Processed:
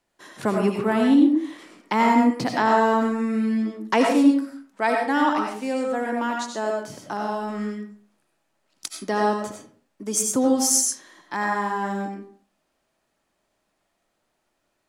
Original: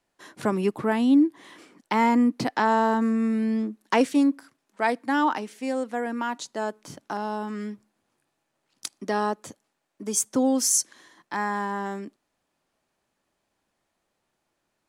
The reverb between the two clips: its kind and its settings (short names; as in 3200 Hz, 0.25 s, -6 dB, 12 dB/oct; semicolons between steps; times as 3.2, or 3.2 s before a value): digital reverb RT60 0.48 s, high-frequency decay 0.65×, pre-delay 50 ms, DRR 1 dB; gain +1 dB